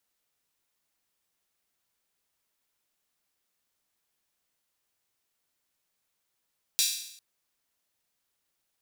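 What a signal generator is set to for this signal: open hi-hat length 0.40 s, high-pass 3900 Hz, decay 0.74 s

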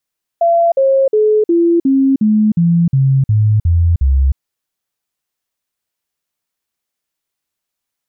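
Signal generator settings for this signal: stepped sine 679 Hz down, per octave 3, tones 11, 0.31 s, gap 0.05 s -8 dBFS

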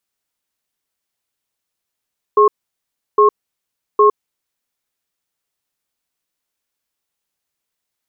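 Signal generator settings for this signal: cadence 418 Hz, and 1080 Hz, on 0.11 s, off 0.70 s, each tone -9.5 dBFS 1.99 s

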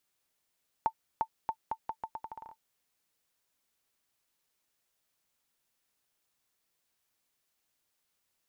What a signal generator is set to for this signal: bouncing ball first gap 0.35 s, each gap 0.8, 891 Hz, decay 72 ms -17 dBFS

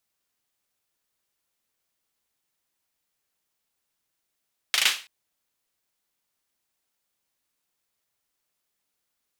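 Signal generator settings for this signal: hand clap length 0.33 s, bursts 4, apart 38 ms, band 2800 Hz, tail 0.33 s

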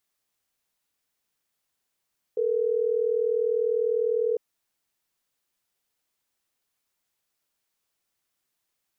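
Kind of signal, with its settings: call progress tone ringback tone, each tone -24.5 dBFS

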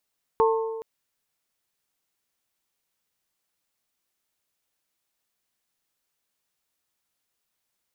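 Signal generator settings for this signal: glass hit bell, length 0.42 s, lowest mode 448 Hz, modes 3, decay 1.53 s, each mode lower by 3 dB, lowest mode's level -17 dB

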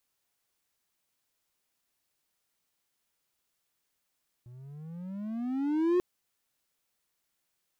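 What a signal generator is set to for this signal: gliding synth tone triangle, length 1.54 s, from 119 Hz, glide +19.5 st, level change +25 dB, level -19.5 dB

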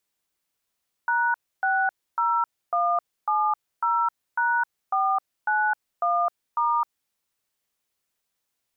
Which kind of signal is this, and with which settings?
DTMF "#60170#491*", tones 0.262 s, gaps 0.287 s, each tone -22.5 dBFS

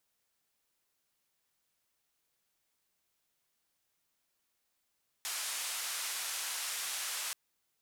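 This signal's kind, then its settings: noise band 950–11000 Hz, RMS -38 dBFS 2.08 s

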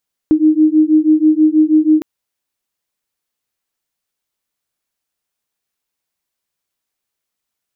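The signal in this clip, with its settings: beating tones 307 Hz, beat 6.2 Hz, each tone -11 dBFS 1.71 s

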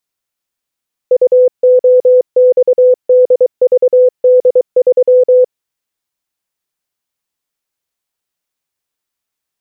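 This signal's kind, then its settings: Morse "UOXDVD3" 23 wpm 503 Hz -3.5 dBFS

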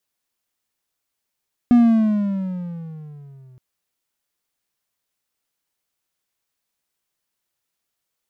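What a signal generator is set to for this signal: gliding synth tone triangle, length 1.87 s, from 244 Hz, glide -11.5 st, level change -36 dB, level -6 dB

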